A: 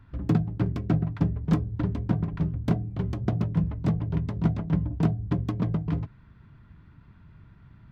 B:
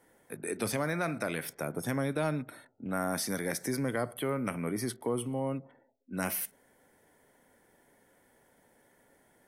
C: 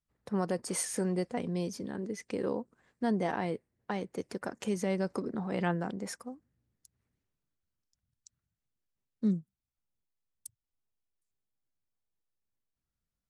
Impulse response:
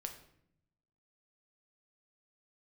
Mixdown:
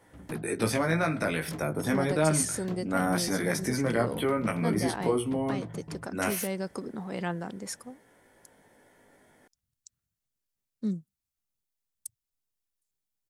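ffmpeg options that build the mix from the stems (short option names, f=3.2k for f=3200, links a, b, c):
-filter_complex "[0:a]highpass=f=260:p=1,aeval=exprs='0.188*sin(PI/2*2*val(0)/0.188)':c=same,flanger=delay=9.6:depth=9.6:regen=-54:speed=0.54:shape=triangular,volume=-14dB[a];[1:a]aemphasis=mode=reproduction:type=50fm,acontrast=32,flanger=delay=17:depth=2.5:speed=0.27,volume=2dB[b];[2:a]adelay=1600,volume=-2dB[c];[a][b][c]amix=inputs=3:normalize=0,highshelf=f=4k:g=9"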